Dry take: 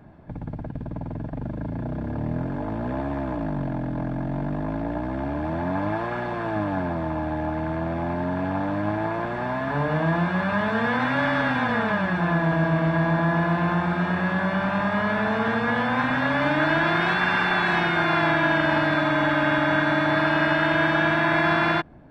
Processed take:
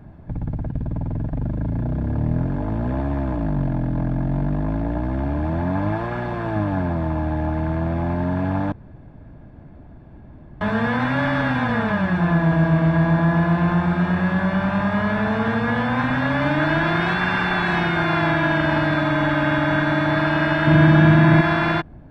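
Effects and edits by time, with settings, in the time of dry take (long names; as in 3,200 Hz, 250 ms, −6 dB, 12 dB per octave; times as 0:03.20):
0:08.72–0:10.61: fill with room tone
0:20.67–0:21.41: parametric band 150 Hz +11.5 dB 2.2 octaves
whole clip: low-shelf EQ 160 Hz +12 dB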